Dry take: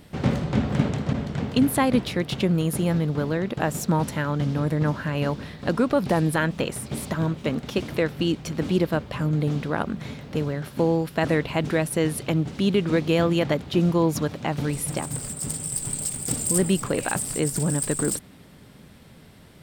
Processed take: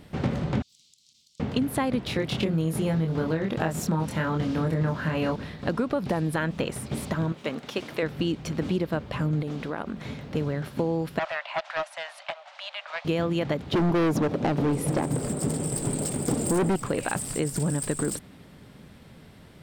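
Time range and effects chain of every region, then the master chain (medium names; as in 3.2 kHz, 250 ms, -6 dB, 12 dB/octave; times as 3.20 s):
0.62–1.40 s: inverse Chebyshev high-pass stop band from 1.8 kHz, stop band 50 dB + compression 3:1, threshold -54 dBFS
2.06–5.36 s: doubling 25 ms -2.5 dB + tape noise reduction on one side only encoder only
7.32–8.03 s: high-pass 220 Hz 6 dB/octave + bass shelf 390 Hz -6.5 dB
9.42–10.06 s: peaking EQ 110 Hz -9.5 dB 1.2 oct + compression 3:1, threshold -28 dBFS
11.19–13.05 s: steep high-pass 590 Hz 96 dB/octave + distance through air 100 m + loudspeaker Doppler distortion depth 0.18 ms
13.72–16.76 s: peaking EQ 390 Hz +14.5 dB 2.8 oct + hard clipper -15 dBFS
whole clip: treble shelf 5.7 kHz -6 dB; compression, threshold -22 dBFS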